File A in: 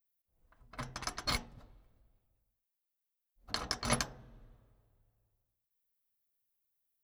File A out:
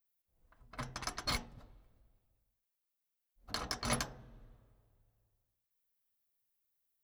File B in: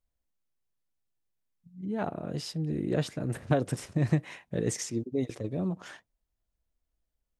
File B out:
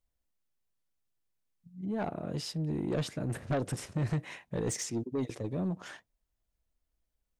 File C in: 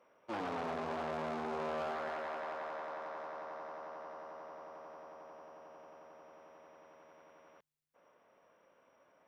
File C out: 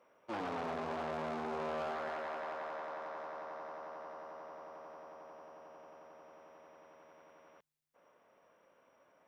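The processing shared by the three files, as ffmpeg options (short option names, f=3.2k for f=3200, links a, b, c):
-af "asoftclip=type=tanh:threshold=-25.5dB"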